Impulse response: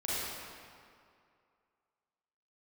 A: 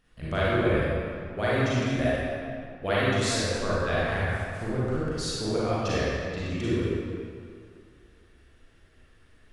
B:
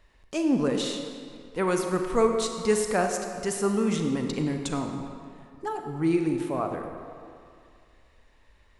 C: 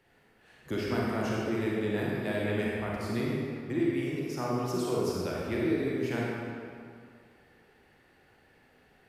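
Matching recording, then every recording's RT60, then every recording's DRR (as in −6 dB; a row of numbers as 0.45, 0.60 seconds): A; 2.3, 2.3, 2.3 seconds; −9.5, 4.0, −5.0 decibels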